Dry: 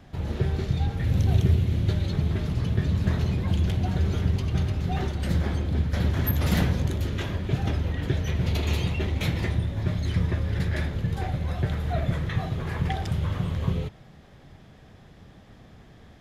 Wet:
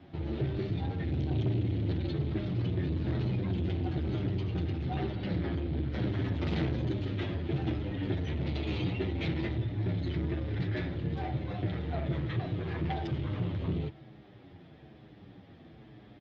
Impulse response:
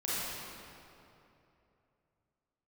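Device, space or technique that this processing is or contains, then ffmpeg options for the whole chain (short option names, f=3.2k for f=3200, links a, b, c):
barber-pole flanger into a guitar amplifier: -filter_complex "[0:a]asplit=2[a][b];[b]adelay=8.3,afreqshift=-1.1[c];[a][c]amix=inputs=2:normalize=1,asoftclip=type=tanh:threshold=-26dB,highpass=85,equalizer=f=120:t=q:w=4:g=3,equalizer=f=320:t=q:w=4:g=10,equalizer=f=1.1k:t=q:w=4:g=-4,equalizer=f=1.6k:t=q:w=4:g=-3,lowpass=f=4.1k:w=0.5412,lowpass=f=4.1k:w=1.3066,asettb=1/sr,asplit=3[d][e][f];[d]atrim=end=5.034[g];[e]atrim=start=5.03:end=5.89,asetpts=PTS-STARTPTS,afade=t=in:d=0.004:c=qsin,afade=t=out:st=0.856:d=0.004:c=qsin,lowpass=f=5.5k:w=0.5412,lowpass=f=5.5k:w=1.3066[h];[f]atrim=start=5.886[i];[g][h]acrossfade=d=0.004:c1=hsin:c2=qsin[j];[j][i]acrossfade=d=0.004:c1=qsin:c2=hsin"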